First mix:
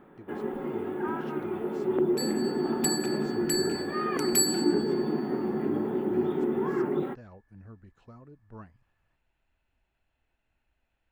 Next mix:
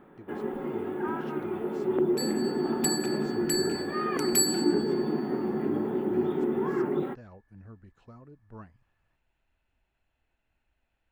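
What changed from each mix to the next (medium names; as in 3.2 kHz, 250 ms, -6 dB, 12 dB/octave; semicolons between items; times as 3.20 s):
no change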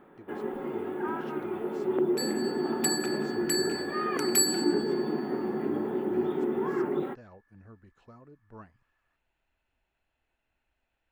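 second sound: add resonant high-pass 1.2 kHz, resonance Q 1.6; master: add tone controls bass -5 dB, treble 0 dB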